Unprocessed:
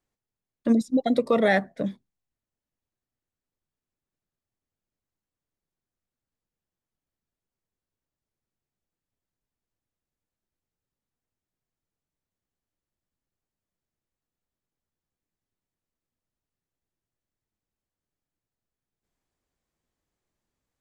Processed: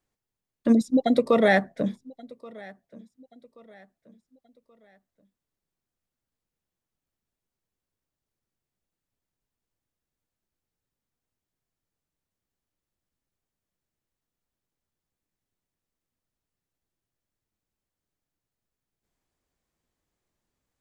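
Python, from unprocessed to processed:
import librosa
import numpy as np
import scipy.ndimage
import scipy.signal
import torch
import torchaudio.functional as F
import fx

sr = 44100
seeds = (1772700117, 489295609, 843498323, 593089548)

y = fx.echo_feedback(x, sr, ms=1129, feedback_pct=38, wet_db=-23.0)
y = y * 10.0 ** (1.5 / 20.0)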